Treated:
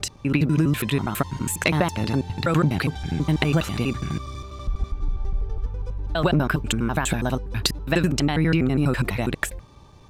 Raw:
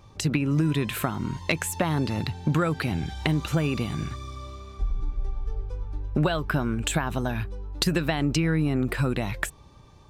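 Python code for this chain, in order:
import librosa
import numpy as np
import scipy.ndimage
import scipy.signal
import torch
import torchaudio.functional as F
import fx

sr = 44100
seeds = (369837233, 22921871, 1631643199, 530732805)

y = fx.block_reorder(x, sr, ms=82.0, group=3)
y = y * librosa.db_to_amplitude(3.5)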